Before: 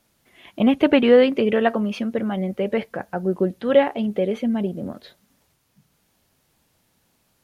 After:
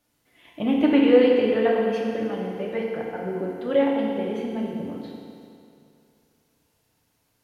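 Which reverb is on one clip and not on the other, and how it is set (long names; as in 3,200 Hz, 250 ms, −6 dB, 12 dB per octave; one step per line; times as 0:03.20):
feedback delay network reverb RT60 2.5 s, low-frequency decay 0.9×, high-frequency decay 0.9×, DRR −3 dB
level −8.5 dB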